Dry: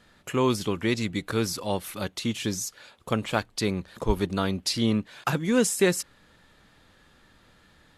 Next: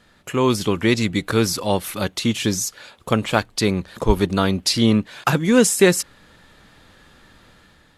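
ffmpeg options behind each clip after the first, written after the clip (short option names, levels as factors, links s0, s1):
-af "dynaudnorm=f=200:g=5:m=1.78,volume=1.41"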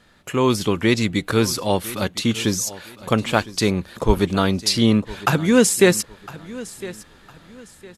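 -af "aecho=1:1:1008|2016|3024:0.126|0.0378|0.0113"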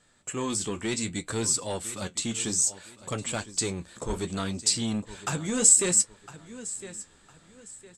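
-filter_complex "[0:a]lowpass=f=7900:t=q:w=11,flanger=delay=6.5:depth=8.6:regen=-48:speed=0.63:shape=triangular,acrossover=split=3300[s0][s1];[s0]asoftclip=type=tanh:threshold=0.141[s2];[s2][s1]amix=inputs=2:normalize=0,volume=0.473"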